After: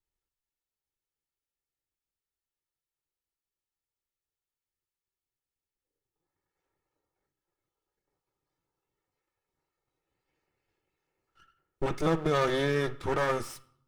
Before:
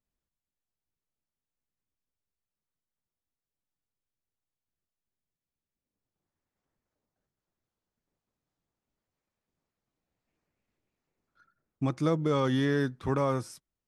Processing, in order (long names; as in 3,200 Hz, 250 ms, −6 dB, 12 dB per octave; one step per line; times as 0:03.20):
lower of the sound and its delayed copy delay 2.3 ms
noise reduction from a noise print of the clip's start 6 dB
on a send: flat-topped bell 1,900 Hz +11 dB + convolution reverb RT60 0.70 s, pre-delay 3 ms, DRR 6.5 dB
on the sum: level +4.5 dB